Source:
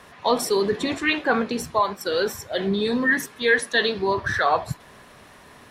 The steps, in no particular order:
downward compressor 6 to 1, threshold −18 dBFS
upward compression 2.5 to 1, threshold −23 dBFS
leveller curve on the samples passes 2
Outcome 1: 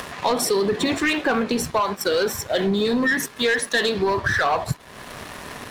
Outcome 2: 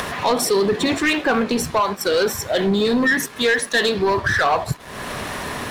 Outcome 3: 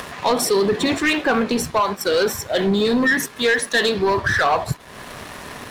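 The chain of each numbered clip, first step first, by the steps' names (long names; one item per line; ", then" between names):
leveller curve on the samples, then upward compression, then downward compressor
upward compression, then downward compressor, then leveller curve on the samples
downward compressor, then leveller curve on the samples, then upward compression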